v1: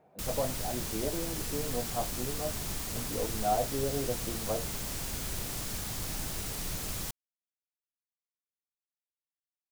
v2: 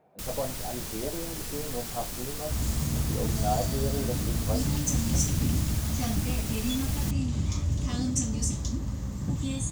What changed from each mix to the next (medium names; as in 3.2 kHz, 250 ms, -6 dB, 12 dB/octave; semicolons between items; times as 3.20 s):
second sound: unmuted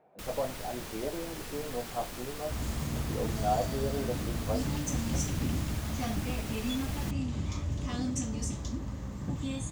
master: add tone controls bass -6 dB, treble -9 dB